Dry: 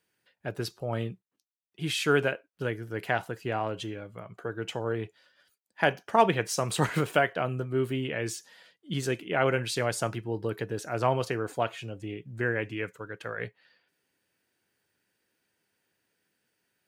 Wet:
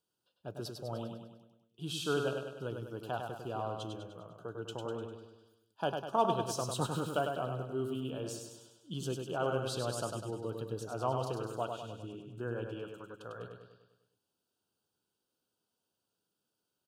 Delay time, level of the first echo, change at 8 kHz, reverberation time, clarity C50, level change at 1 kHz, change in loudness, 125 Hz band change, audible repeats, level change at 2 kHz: 100 ms, -5.0 dB, -7.0 dB, no reverb, no reverb, -6.5 dB, -7.5 dB, -7.0 dB, 6, -15.0 dB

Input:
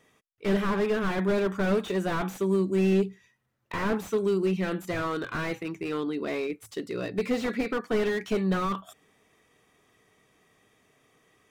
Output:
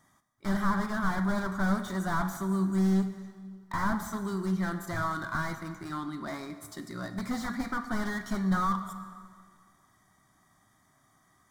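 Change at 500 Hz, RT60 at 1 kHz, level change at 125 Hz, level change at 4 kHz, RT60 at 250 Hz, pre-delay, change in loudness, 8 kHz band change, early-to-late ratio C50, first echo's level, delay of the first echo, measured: -12.5 dB, 2.0 s, 0.0 dB, -5.5 dB, 1.9 s, 16 ms, -3.0 dB, +1.5 dB, 10.0 dB, no echo, no echo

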